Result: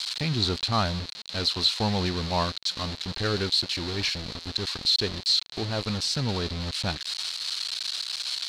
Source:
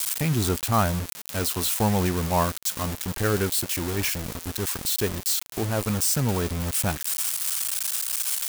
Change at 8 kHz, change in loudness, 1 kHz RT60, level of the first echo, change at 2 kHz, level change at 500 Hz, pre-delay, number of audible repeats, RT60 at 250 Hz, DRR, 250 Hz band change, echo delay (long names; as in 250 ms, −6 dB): −11.5 dB, −2.0 dB, no reverb audible, no echo audible, −2.0 dB, −4.0 dB, no reverb audible, no echo audible, no reverb audible, no reverb audible, −4.0 dB, no echo audible